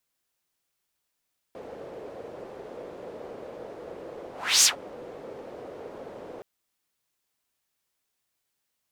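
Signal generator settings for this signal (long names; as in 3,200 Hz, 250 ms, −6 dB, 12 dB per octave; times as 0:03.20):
pass-by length 4.87 s, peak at 0:03.09, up 0.32 s, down 0.13 s, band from 490 Hz, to 6,800 Hz, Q 2.9, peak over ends 24.5 dB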